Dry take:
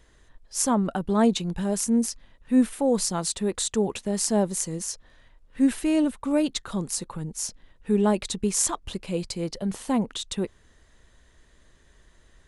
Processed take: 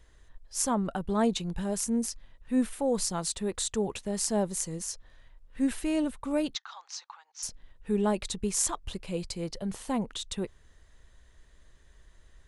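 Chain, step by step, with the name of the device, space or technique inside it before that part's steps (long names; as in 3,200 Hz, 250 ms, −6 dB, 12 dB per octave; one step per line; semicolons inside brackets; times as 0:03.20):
low shelf boost with a cut just above (low-shelf EQ 85 Hz +6.5 dB; parametric band 250 Hz −3.5 dB 1.2 octaves)
0:06.55–0:07.43: Chebyshev band-pass filter 790–6,100 Hz, order 4
level −4 dB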